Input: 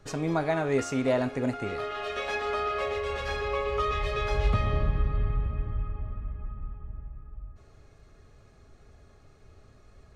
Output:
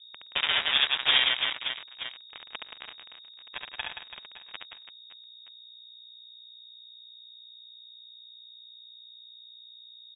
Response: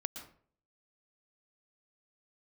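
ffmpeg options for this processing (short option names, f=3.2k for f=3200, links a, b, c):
-filter_complex "[0:a]highpass=f=190:w=0.5412,highpass=f=190:w=1.3066,aeval=exprs='0.188*(cos(1*acos(clip(val(0)/0.188,-1,1)))-cos(1*PI/2))+0.075*(cos(3*acos(clip(val(0)/0.188,-1,1)))-cos(3*PI/2))+0.00211*(cos(5*acos(clip(val(0)/0.188,-1,1)))-cos(5*PI/2))+0.00668*(cos(7*acos(clip(val(0)/0.188,-1,1)))-cos(7*PI/2))+0.00266*(cos(8*acos(clip(val(0)/0.188,-1,1)))-cos(8*PI/2))':c=same,aeval=exprs='sgn(val(0))*max(abs(val(0))-0.0133,0)':c=same,asplit=2[a][b];[b]aecho=0:1:70|175|332.5|568.8|923.1:0.631|0.398|0.251|0.158|0.1[c];[a][c]amix=inputs=2:normalize=0,aeval=exprs='0.251*sin(PI/2*3.55*val(0)/0.251)':c=same,aeval=exprs='val(0)+0.00355*(sin(2*PI*60*n/s)+sin(2*PI*2*60*n/s)/2+sin(2*PI*3*60*n/s)/3+sin(2*PI*4*60*n/s)/4+sin(2*PI*5*60*n/s)/5)':c=same,lowpass=f=3.2k:t=q:w=0.5098,lowpass=f=3.2k:t=q:w=0.6013,lowpass=f=3.2k:t=q:w=0.9,lowpass=f=3.2k:t=q:w=2.563,afreqshift=-3800"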